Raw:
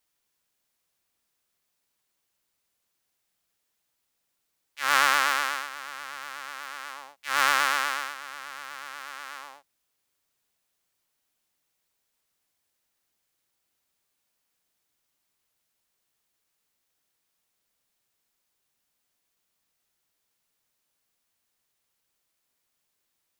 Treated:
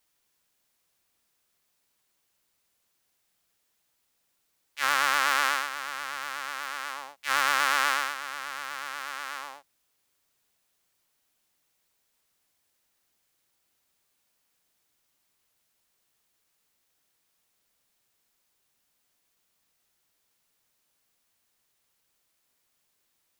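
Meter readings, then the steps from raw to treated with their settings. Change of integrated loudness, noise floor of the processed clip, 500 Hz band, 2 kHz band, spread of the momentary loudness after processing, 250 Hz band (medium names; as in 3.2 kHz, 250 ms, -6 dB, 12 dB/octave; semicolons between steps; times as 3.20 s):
-2.0 dB, -75 dBFS, -0.5 dB, -0.5 dB, 13 LU, -0.5 dB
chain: peak limiter -12.5 dBFS, peak gain reduction 8.5 dB; trim +3.5 dB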